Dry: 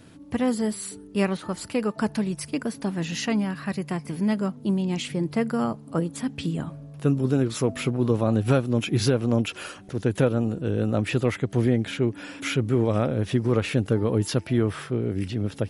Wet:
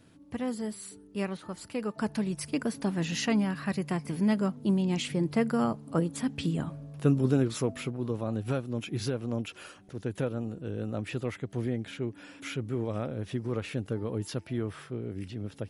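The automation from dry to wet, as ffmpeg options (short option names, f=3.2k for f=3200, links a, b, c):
-af "volume=-2dB,afade=t=in:st=1.69:d=0.94:silence=0.446684,afade=t=out:st=7.28:d=0.66:silence=0.398107"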